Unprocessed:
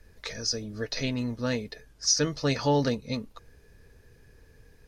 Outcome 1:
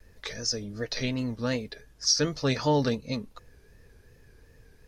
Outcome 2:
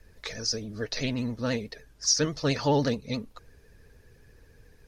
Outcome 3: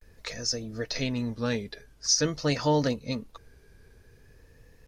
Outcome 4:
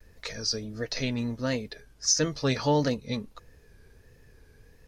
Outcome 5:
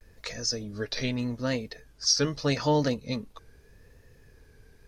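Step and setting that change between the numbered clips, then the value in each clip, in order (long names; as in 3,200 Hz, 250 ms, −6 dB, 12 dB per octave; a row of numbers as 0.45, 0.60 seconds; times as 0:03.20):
pitch vibrato, speed: 2.7, 14, 0.47, 1.5, 0.81 Hertz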